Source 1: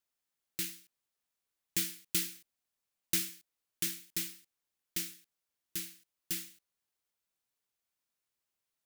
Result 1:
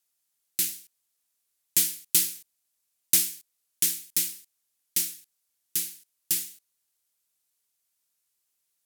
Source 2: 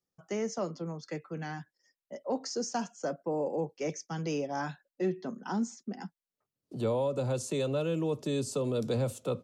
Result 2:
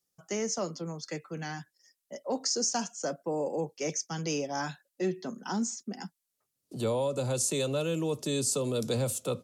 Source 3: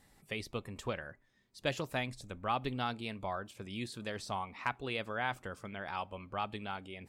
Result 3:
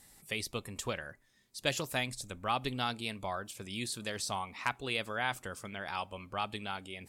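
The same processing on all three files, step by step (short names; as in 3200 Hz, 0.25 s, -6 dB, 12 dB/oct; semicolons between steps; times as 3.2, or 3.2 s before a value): bell 11000 Hz +13.5 dB 2.3 oct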